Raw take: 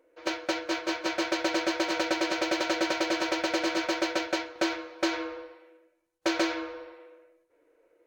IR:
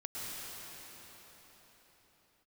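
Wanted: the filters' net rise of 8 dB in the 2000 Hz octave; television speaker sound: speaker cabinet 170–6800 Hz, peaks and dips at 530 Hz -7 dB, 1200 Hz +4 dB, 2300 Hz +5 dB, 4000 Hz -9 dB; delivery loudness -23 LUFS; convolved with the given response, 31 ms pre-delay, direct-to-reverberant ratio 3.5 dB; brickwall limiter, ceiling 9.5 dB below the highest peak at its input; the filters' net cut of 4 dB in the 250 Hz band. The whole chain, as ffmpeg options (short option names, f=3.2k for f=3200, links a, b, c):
-filter_complex "[0:a]equalizer=f=250:t=o:g=-6,equalizer=f=2k:t=o:g=7,alimiter=limit=-23.5dB:level=0:latency=1,asplit=2[a][b];[1:a]atrim=start_sample=2205,adelay=31[c];[b][c]afir=irnorm=-1:irlink=0,volume=-6dB[d];[a][d]amix=inputs=2:normalize=0,highpass=f=170:w=0.5412,highpass=f=170:w=1.3066,equalizer=f=530:t=q:w=4:g=-7,equalizer=f=1.2k:t=q:w=4:g=4,equalizer=f=2.3k:t=q:w=4:g=5,equalizer=f=4k:t=q:w=4:g=-9,lowpass=f=6.8k:w=0.5412,lowpass=f=6.8k:w=1.3066,volume=6.5dB"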